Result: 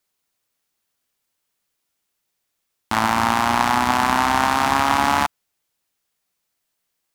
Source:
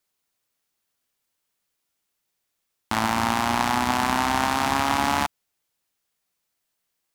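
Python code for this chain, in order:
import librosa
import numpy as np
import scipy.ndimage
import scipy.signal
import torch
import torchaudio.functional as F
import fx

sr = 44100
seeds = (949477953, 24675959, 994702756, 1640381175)

y = fx.dynamic_eq(x, sr, hz=1200.0, q=0.93, threshold_db=-31.0, ratio=4.0, max_db=4)
y = y * 10.0 ** (2.0 / 20.0)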